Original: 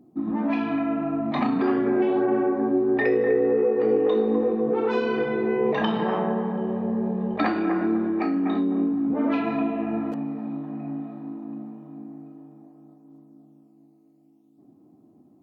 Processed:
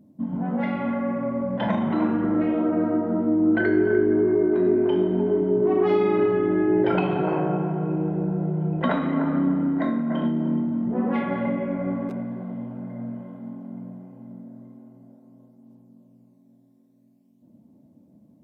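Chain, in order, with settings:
spring reverb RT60 1.9 s, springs 48/56 ms, chirp 45 ms, DRR 8.5 dB
change of speed 0.837×

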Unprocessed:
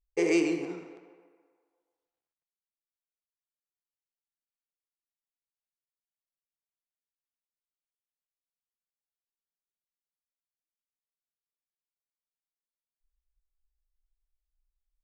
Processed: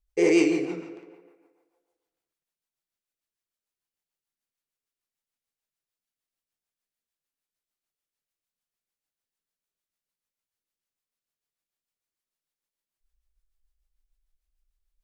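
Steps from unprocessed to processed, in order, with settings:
flutter between parallel walls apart 9.8 metres, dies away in 0.39 s
rotating-speaker cabinet horn 6.7 Hz
level +6.5 dB

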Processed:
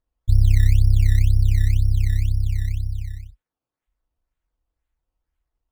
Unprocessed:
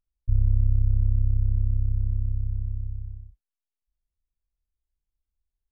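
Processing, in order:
sample-and-hold swept by an LFO 16×, swing 100% 2 Hz
notch comb filter 200 Hz
level +6.5 dB

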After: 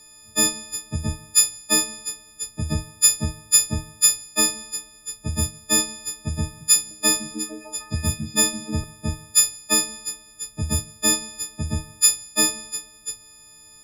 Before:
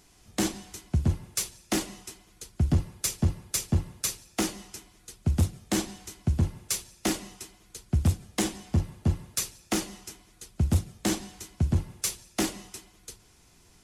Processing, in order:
every partial snapped to a pitch grid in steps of 6 semitones
0:06.45–0:08.84: echo through a band-pass that steps 152 ms, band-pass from 160 Hz, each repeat 0.7 octaves, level −0.5 dB

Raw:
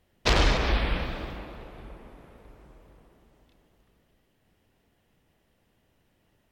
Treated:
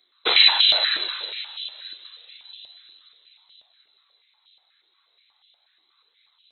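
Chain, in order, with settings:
voice inversion scrambler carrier 4,000 Hz
flanger 0.32 Hz, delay 0.5 ms, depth 1.9 ms, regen −47%
high-pass on a step sequencer 8.3 Hz 340–3,100 Hz
level +5 dB

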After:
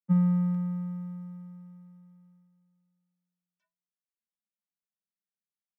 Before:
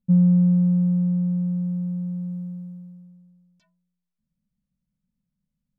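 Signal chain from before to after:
high-pass filter 720 Hz 12 dB per octave
convolution reverb RT60 0.15 s, pre-delay 3 ms, DRR 7.5 dB
expander for the loud parts 2.5 to 1, over −46 dBFS
level +8 dB

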